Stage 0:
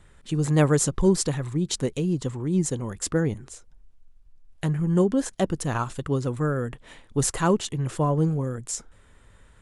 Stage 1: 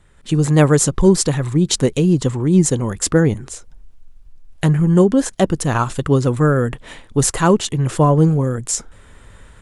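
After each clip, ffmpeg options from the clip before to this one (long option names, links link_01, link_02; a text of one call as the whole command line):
ffmpeg -i in.wav -af "dynaudnorm=framelen=160:gausssize=3:maxgain=11dB" out.wav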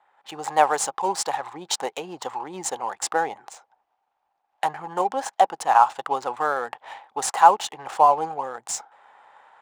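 ffmpeg -i in.wav -af "highpass=frequency=810:width_type=q:width=9.3,adynamicsmooth=sensitivity=5:basefreq=2900,volume=-6dB" out.wav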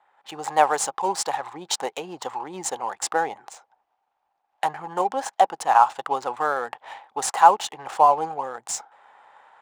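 ffmpeg -i in.wav -af anull out.wav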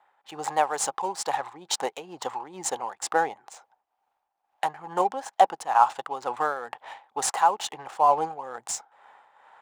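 ffmpeg -i in.wav -af "tremolo=f=2.2:d=0.61" out.wav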